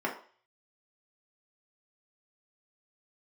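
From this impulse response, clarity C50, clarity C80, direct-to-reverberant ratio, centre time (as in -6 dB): 9.0 dB, 13.5 dB, -3.0 dB, 21 ms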